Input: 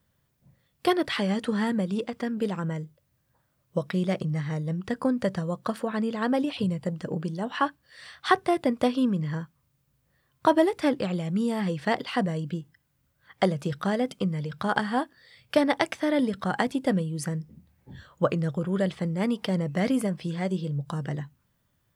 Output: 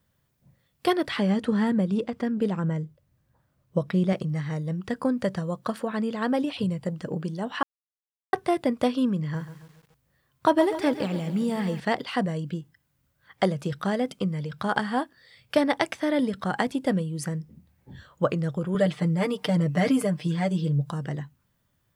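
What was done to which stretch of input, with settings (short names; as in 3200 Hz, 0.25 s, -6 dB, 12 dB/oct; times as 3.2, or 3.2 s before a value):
1.1–4.13 tilt -1.5 dB/oct
7.63–8.33 mute
9.21–11.8 lo-fi delay 0.138 s, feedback 55%, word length 8-bit, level -12 dB
18.74–20.9 comb 6.7 ms, depth 97%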